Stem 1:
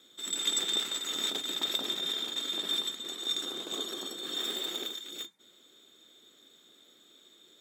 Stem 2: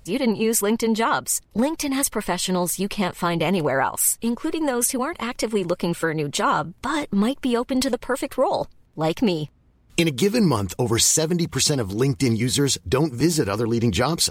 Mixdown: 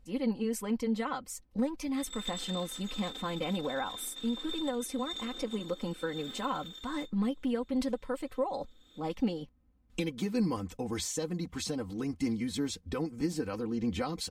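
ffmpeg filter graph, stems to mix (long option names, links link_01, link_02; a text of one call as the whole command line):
ffmpeg -i stem1.wav -i stem2.wav -filter_complex "[0:a]adelay=1800,volume=-1.5dB[link_01];[1:a]lowshelf=frequency=330:gain=5,volume=-16dB,asplit=2[link_02][link_03];[link_03]apad=whole_len=414813[link_04];[link_01][link_04]sidechaincompress=threshold=-43dB:ratio=8:attack=8.2:release=462[link_05];[link_05][link_02]amix=inputs=2:normalize=0,highshelf=frequency=5500:gain=-7.5,aecho=1:1:3.9:0.7" out.wav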